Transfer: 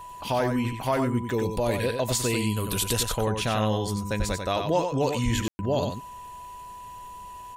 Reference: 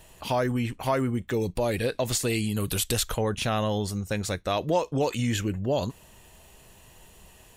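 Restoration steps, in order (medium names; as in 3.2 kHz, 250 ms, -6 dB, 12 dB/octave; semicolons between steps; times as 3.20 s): band-stop 990 Hz, Q 30; de-plosive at 4.18/5.24 s; room tone fill 5.48–5.59 s; inverse comb 93 ms -6 dB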